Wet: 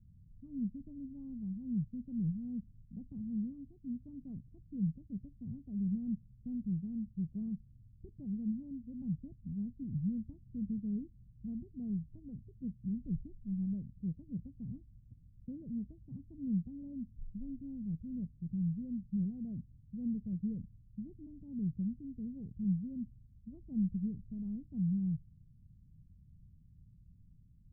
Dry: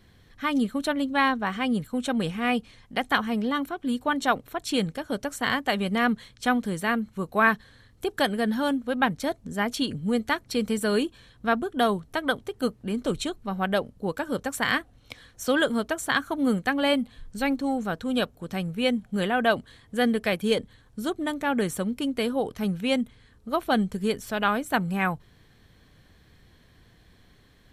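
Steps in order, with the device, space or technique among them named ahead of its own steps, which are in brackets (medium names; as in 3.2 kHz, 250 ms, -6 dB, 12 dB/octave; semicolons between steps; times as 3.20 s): the neighbour's flat through the wall (low-pass 170 Hz 24 dB/octave; peaking EQ 180 Hz +3 dB); trim -1.5 dB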